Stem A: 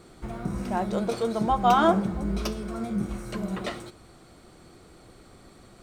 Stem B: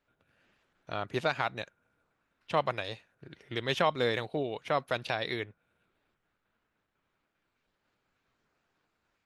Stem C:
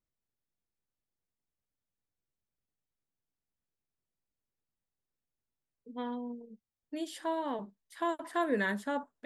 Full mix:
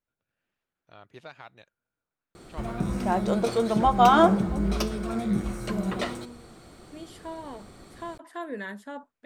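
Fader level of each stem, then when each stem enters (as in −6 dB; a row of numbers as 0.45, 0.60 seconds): +2.5, −15.0, −5.0 decibels; 2.35, 0.00, 0.00 seconds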